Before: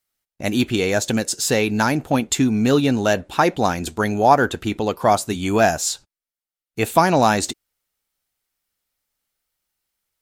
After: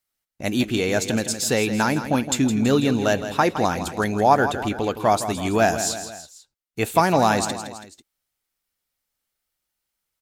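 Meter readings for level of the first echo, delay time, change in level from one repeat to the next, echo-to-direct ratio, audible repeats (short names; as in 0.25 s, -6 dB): -11.0 dB, 0.164 s, -5.5 dB, -9.5 dB, 3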